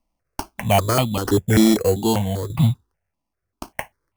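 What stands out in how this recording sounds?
aliases and images of a low sample rate 3,700 Hz, jitter 0%
tremolo saw down 0.8 Hz, depth 65%
notches that jump at a steady rate 5.1 Hz 420–1,600 Hz

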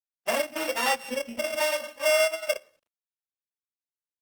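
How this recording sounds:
a buzz of ramps at a fixed pitch in blocks of 16 samples
sample-and-hold tremolo
a quantiser's noise floor 12 bits, dither none
Opus

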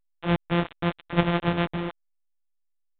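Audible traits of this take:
a buzz of ramps at a fixed pitch in blocks of 256 samples
tremolo triangle 0.78 Hz, depth 50%
a quantiser's noise floor 6 bits, dither none
A-law companding

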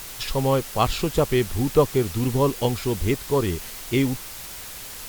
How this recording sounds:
a quantiser's noise floor 6 bits, dither triangular
Opus

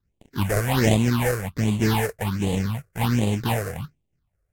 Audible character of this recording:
aliases and images of a low sample rate 1,300 Hz, jitter 20%
phaser sweep stages 6, 1.3 Hz, lowest notch 230–1,500 Hz
Ogg Vorbis

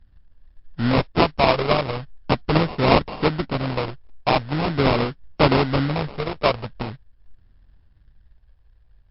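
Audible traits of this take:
a buzz of ramps at a fixed pitch in blocks of 16 samples
phaser sweep stages 4, 0.43 Hz, lowest notch 250–1,400 Hz
aliases and images of a low sample rate 1,700 Hz, jitter 20%
MP3

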